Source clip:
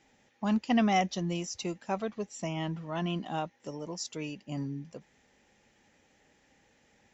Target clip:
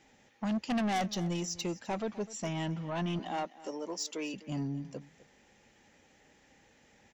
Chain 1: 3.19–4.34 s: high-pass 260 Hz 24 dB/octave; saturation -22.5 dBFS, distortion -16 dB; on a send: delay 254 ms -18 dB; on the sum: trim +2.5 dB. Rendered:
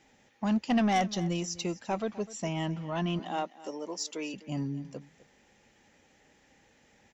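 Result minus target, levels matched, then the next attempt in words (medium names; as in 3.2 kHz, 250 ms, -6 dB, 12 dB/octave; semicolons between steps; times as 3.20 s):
saturation: distortion -8 dB
3.19–4.34 s: high-pass 260 Hz 24 dB/octave; saturation -30.5 dBFS, distortion -8 dB; on a send: delay 254 ms -18 dB; on the sum: trim +2.5 dB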